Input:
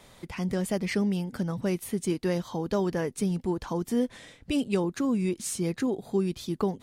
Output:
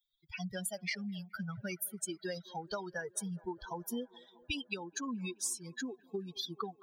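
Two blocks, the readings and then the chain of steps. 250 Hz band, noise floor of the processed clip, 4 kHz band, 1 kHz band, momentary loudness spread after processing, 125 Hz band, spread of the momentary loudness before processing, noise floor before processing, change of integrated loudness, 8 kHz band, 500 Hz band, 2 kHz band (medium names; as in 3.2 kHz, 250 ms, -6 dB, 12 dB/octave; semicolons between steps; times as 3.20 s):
-14.5 dB, -69 dBFS, -1.5 dB, -6.5 dB, 6 LU, -14.0 dB, 4 LU, -57 dBFS, -10.5 dB, -1.0 dB, -13.5 dB, -2.5 dB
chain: expander on every frequency bin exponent 3; tilt shelf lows -9.5 dB, about 1.1 kHz; compression 6:1, threshold -44 dBFS, peak gain reduction 18 dB; feedback echo behind a band-pass 213 ms, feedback 76%, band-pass 640 Hz, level -20.5 dB; trim +8 dB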